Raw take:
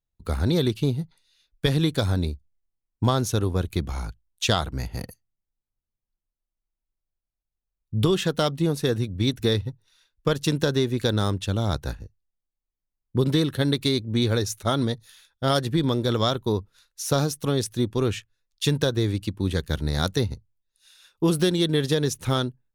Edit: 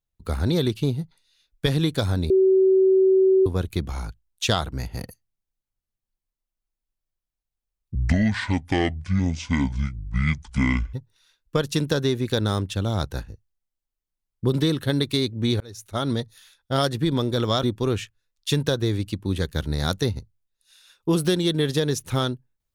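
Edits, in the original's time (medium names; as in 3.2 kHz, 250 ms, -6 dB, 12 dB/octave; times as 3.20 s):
2.30–3.46 s: bleep 380 Hz -13.5 dBFS
7.95–9.65 s: speed 57%
14.32–14.86 s: fade in
16.35–17.78 s: delete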